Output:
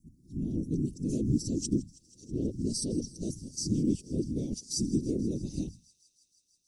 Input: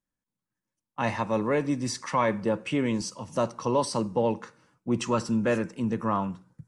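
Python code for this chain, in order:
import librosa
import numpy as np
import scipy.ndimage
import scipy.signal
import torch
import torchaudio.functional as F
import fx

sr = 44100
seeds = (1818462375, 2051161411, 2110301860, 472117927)

y = x[::-1].copy()
y = fx.high_shelf(y, sr, hz=9600.0, db=7.5)
y = fx.hum_notches(y, sr, base_hz=60, count=2)
y = fx.whisperise(y, sr, seeds[0])
y = scipy.signal.sosfilt(scipy.signal.ellip(3, 1.0, 80, [320.0, 5100.0], 'bandstop', fs=sr, output='sos'), y)
y = fx.echo_wet_highpass(y, sr, ms=161, feedback_pct=82, hz=3100.0, wet_db=-20)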